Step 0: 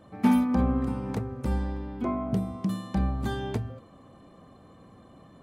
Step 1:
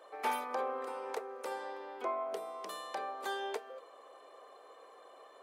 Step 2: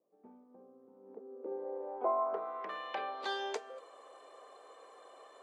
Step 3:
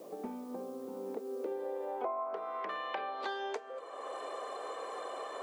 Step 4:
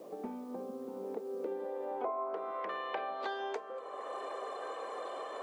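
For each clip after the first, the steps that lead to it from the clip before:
elliptic high-pass 430 Hz, stop band 80 dB; in parallel at -2 dB: compressor, threshold -43 dBFS, peak gain reduction 14.5 dB; on the sum: gain -3 dB
high shelf 11000 Hz -5.5 dB; low-pass sweep 140 Hz -> 8600 Hz, 0.83–3.74
three-band squash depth 100%; gain +1.5 dB
high shelf 4300 Hz -6 dB; delay with a stepping band-pass 0.455 s, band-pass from 180 Hz, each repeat 1.4 oct, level -5 dB

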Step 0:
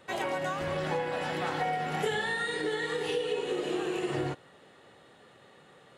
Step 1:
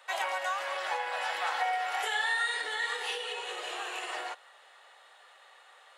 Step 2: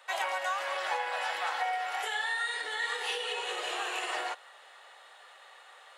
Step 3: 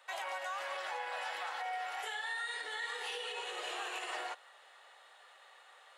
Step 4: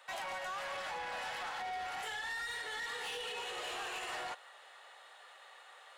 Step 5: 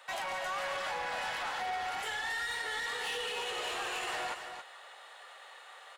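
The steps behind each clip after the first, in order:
HPF 710 Hz 24 dB/oct; gain +3 dB
vocal rider within 3 dB 0.5 s
limiter -25 dBFS, peak gain reduction 5 dB; gain -5.5 dB
soft clip -39.5 dBFS, distortion -12 dB; gain +3 dB
echo 0.274 s -8 dB; gain +4 dB

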